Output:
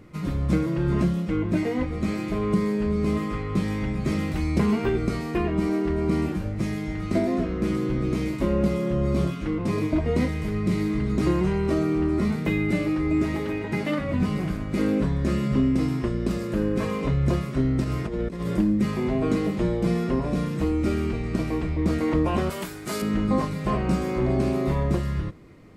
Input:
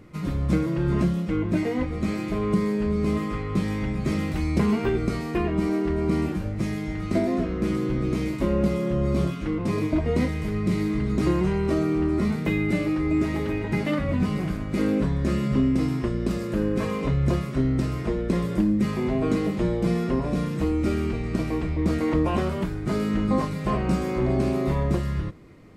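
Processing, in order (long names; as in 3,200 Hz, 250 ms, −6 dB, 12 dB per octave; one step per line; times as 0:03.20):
0:13.36–0:14.14: low-shelf EQ 88 Hz −11.5 dB
0:17.84–0:18.57: compressor whose output falls as the input rises −27 dBFS, ratio −0.5
0:22.50–0:23.02: RIAA equalisation recording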